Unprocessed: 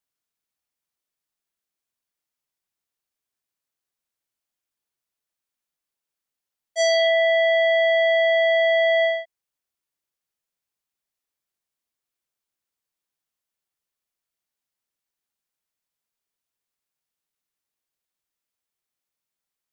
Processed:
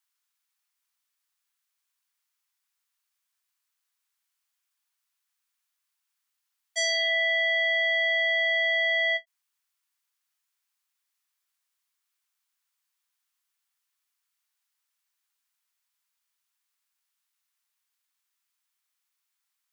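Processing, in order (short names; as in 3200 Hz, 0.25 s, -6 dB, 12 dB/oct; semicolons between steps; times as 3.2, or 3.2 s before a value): HPF 950 Hz 24 dB/oct; limiter -24 dBFS, peak gain reduction 7.5 dB; ending taper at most 510 dB/s; gain +5.5 dB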